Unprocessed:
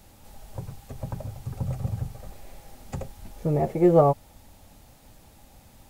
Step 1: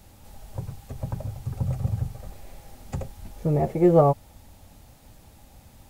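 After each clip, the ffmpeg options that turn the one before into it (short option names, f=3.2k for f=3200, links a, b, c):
-af "equalizer=f=78:t=o:w=1.9:g=4"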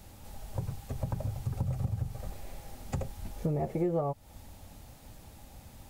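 -af "acompressor=threshold=-28dB:ratio=6"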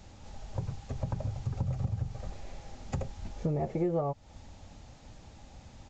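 -af "aresample=16000,aresample=44100"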